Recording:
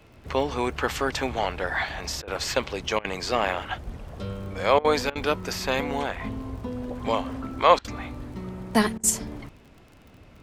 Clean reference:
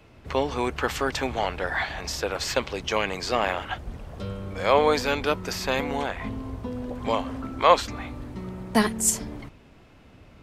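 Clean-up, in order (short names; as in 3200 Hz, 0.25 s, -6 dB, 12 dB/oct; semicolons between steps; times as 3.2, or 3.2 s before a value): de-click; interpolate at 2.22/2.99/4.79/5.1/7.79/8.98, 54 ms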